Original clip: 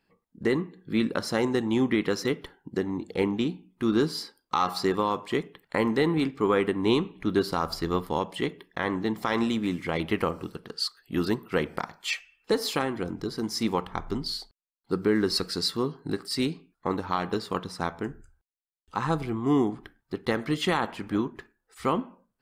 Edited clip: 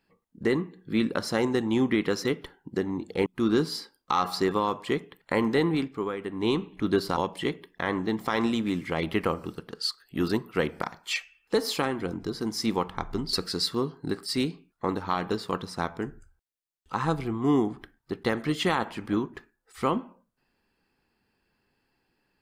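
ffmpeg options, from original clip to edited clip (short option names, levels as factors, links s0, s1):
-filter_complex "[0:a]asplit=5[s0][s1][s2][s3][s4];[s0]atrim=end=3.262[s5];[s1]atrim=start=3.688:end=6.6,asetpts=PTS-STARTPTS,afade=t=out:st=2.422:d=0.49:silence=0.266073[s6];[s2]atrim=start=6.6:end=7.602,asetpts=PTS-STARTPTS,afade=t=in:d=0.49:silence=0.266073[s7];[s3]atrim=start=8.138:end=14.302[s8];[s4]atrim=start=15.348[s9];[s6][s7]concat=n=2:v=0:a=1[s10];[s5][s10]acrossfade=d=0.004:c1=hsin:c2=hsin[s11];[s11][s8]acrossfade=d=0.004:c1=hsin:c2=hsin[s12];[s12][s9]acrossfade=d=0.004:c1=hsin:c2=hsin"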